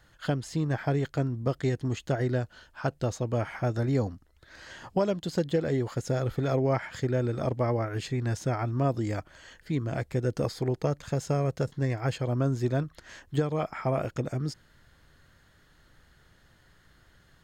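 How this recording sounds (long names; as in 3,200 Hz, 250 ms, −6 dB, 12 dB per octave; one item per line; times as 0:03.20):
background noise floor −62 dBFS
spectral slope −7.0 dB per octave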